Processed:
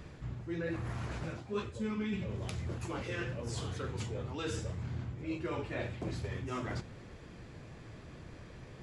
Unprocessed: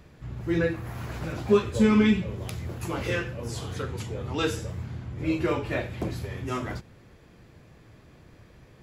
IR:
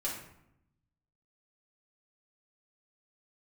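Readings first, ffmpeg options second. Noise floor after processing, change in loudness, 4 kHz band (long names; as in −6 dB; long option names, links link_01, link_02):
−51 dBFS, −10.5 dB, −9.0 dB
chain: -af "areverse,acompressor=threshold=-38dB:ratio=6,areverse,flanger=delay=0.6:depth=8.1:regen=-72:speed=1.1:shape=sinusoidal,aresample=22050,aresample=44100,volume=7dB"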